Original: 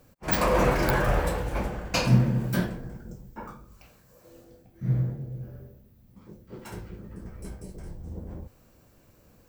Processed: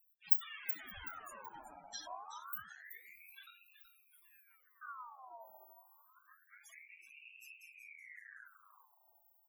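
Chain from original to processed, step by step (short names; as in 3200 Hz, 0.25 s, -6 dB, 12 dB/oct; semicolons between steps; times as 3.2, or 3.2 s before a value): compressor 3:1, threshold -32 dBFS, peak gain reduction 14 dB; pre-emphasis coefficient 0.9; loudest bins only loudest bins 8; on a send: feedback echo 0.376 s, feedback 32%, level -10.5 dB; on the sum: ring modulator with a swept carrier 1700 Hz, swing 55%, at 0.27 Hz; gain +6 dB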